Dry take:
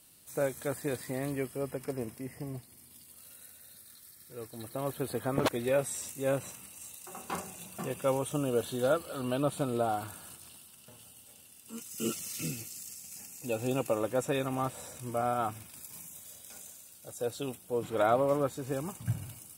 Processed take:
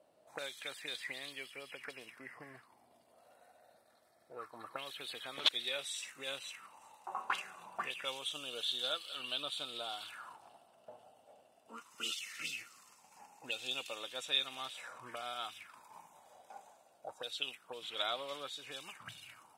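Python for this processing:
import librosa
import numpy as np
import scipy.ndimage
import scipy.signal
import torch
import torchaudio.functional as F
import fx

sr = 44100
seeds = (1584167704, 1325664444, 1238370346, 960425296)

y = fx.auto_wah(x, sr, base_hz=570.0, top_hz=3500.0, q=5.7, full_db=-31.0, direction='up')
y = y * 10.0 ** (14.0 / 20.0)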